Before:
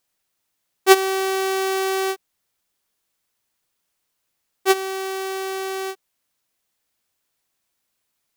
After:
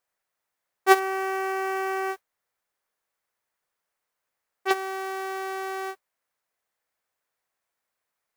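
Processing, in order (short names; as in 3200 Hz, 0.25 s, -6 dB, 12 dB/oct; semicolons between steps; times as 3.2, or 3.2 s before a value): modulation noise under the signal 20 dB; band shelf 970 Hz +9 dB 2.6 oct; 0.99–4.71 core saturation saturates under 2400 Hz; gain -10.5 dB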